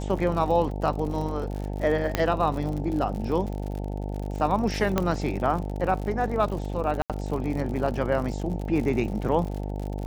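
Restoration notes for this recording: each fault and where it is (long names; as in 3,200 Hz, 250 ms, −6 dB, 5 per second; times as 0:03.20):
mains buzz 50 Hz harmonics 18 −31 dBFS
surface crackle 74 per second −32 dBFS
0:02.15: click −8 dBFS
0:04.98: click −9 dBFS
0:07.02–0:07.10: drop-out 77 ms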